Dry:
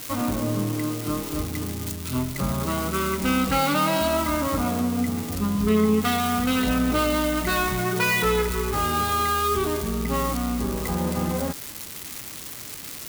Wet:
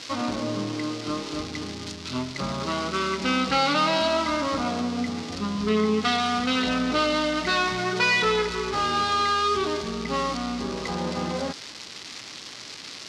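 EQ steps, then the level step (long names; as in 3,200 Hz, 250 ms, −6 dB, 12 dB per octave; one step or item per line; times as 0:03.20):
transistor ladder low-pass 5,800 Hz, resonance 40%
low-shelf EQ 75 Hz −8.5 dB
low-shelf EQ 160 Hz −9 dB
+8.5 dB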